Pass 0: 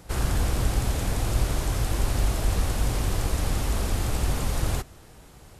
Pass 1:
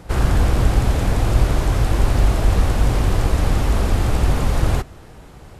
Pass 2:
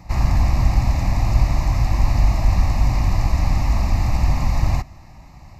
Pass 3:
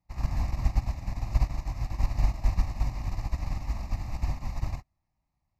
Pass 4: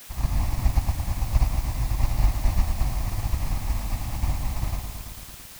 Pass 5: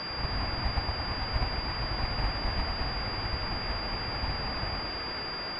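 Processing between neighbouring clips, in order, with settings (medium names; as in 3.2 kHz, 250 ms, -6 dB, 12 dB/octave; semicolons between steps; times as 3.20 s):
treble shelf 4.1 kHz -11 dB; trim +8.5 dB
static phaser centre 2.2 kHz, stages 8
upward expansion 2.5:1, over -31 dBFS; trim -6 dB
word length cut 8-bit, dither triangular; bit-crushed delay 111 ms, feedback 80%, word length 8-bit, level -8 dB; trim +3.5 dB
tilt EQ +2.5 dB/octave; class-D stage that switches slowly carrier 4.8 kHz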